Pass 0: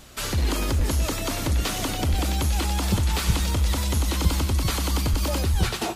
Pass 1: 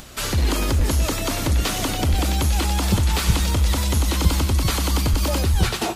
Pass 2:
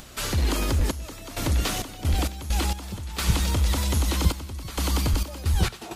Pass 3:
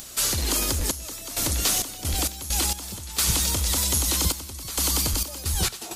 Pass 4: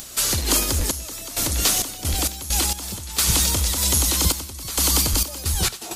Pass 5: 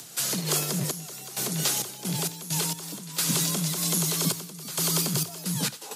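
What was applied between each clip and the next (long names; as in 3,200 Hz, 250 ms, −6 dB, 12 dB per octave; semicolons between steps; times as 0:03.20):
upward compression, threshold −40 dBFS; level +3.5 dB
gate pattern "xxxx..xx.x.x..x" 66 BPM −12 dB; level −3.5 dB
bass and treble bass −4 dB, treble +13 dB; level −1.5 dB
amplitude modulation by smooth noise, depth 55%; level +6 dB
frequency shifter +100 Hz; level −6.5 dB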